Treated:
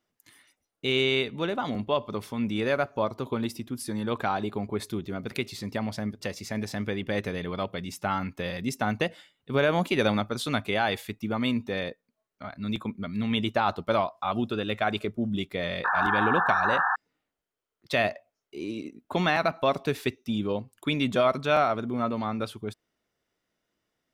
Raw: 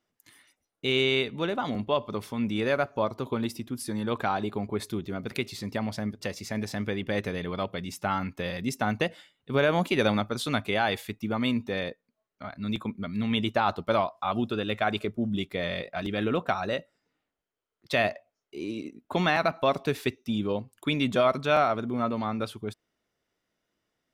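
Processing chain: painted sound noise, 15.84–16.96 s, 710–1800 Hz -25 dBFS

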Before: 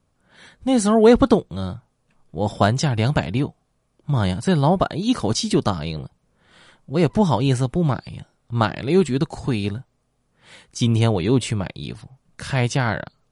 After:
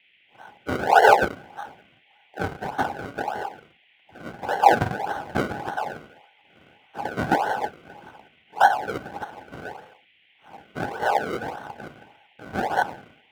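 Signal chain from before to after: whisper effect; static phaser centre 550 Hz, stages 4; gated-style reverb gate 300 ms falling, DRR 3.5 dB; LFO high-pass square 0.78 Hz 750–3500 Hz; rippled EQ curve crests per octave 0.84, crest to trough 6 dB; decimation with a swept rate 35×, swing 100% 1.7 Hz; high-pass 100 Hz 12 dB/octave; small resonant body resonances 820/1500 Hz, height 15 dB, ringing for 25 ms; band noise 1.9–3.3 kHz -54 dBFS; treble shelf 5 kHz -11.5 dB; trim -4.5 dB

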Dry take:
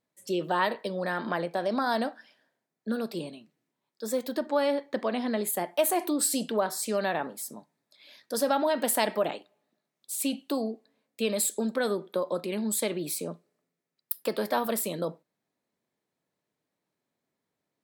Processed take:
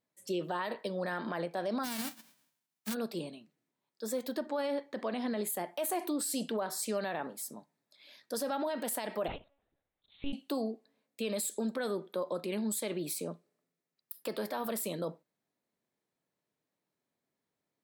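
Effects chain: 1.83–2.93 s: formants flattened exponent 0.1; peak limiter -22 dBFS, peak gain reduction 11.5 dB; 9.28–10.33 s: monotone LPC vocoder at 8 kHz 280 Hz; trim -3.5 dB

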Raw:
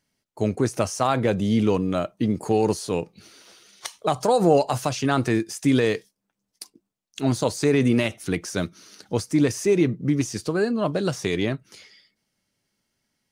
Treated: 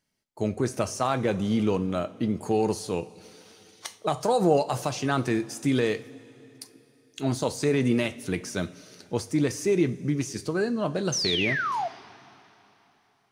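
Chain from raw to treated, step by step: painted sound fall, 11.12–11.88 s, 650–6500 Hz -24 dBFS; two-slope reverb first 0.3 s, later 3.4 s, from -18 dB, DRR 10 dB; trim -4 dB

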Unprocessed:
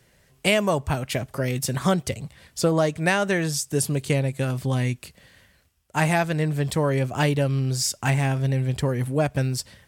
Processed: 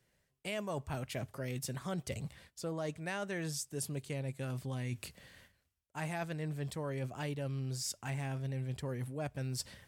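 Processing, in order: reverse; compression 6:1, threshold -32 dBFS, peak gain reduction 16 dB; reverse; gate -55 dBFS, range -11 dB; hum notches 50/100 Hz; trim -4.5 dB

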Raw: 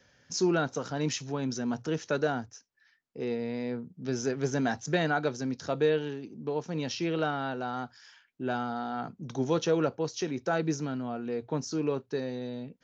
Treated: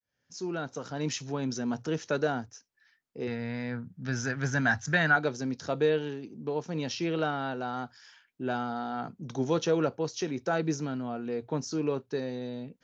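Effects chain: fade-in on the opening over 1.27 s; 3.27–5.16 s: fifteen-band graphic EQ 100 Hz +11 dB, 400 Hz -10 dB, 1.6 kHz +11 dB

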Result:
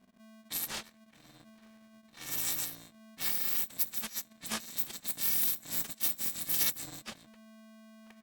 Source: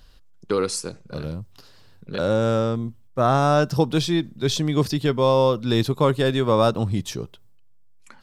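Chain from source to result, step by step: bit-reversed sample order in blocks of 256 samples; formant shift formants -6 st; level-controlled noise filter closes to 2.1 kHz, open at -15.5 dBFS; polarity switched at an audio rate 220 Hz; trim -5.5 dB

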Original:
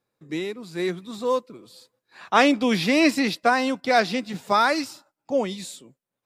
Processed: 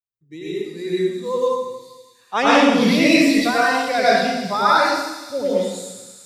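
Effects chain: expander on every frequency bin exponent 1.5; 3.28–3.81 s: high-pass 390 Hz; feedback echo behind a high-pass 106 ms, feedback 84%, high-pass 5.5 kHz, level -6.5 dB; plate-style reverb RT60 1.1 s, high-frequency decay 0.8×, pre-delay 80 ms, DRR -8.5 dB; trim -2 dB

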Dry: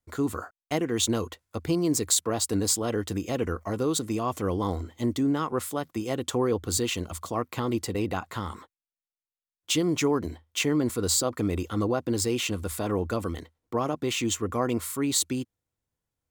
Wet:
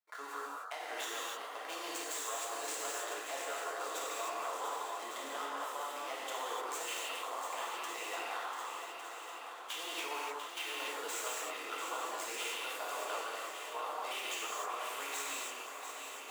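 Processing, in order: median filter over 9 samples; high-pass 720 Hz 24 dB/octave; compression, threshold -37 dBFS, peak gain reduction 11 dB; shuffle delay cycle 1156 ms, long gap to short 1.5:1, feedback 59%, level -8 dB; gated-style reverb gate 330 ms flat, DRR -5.5 dB; trim -4.5 dB

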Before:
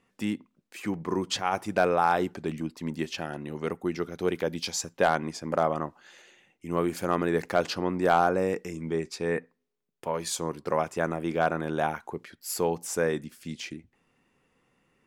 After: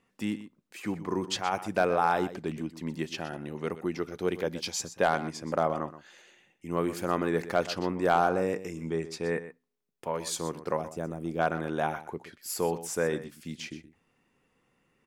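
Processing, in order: 10.77–11.39 s: peaking EQ 1.7 kHz -13.5 dB 2.7 oct; delay 124 ms -14 dB; trim -2 dB

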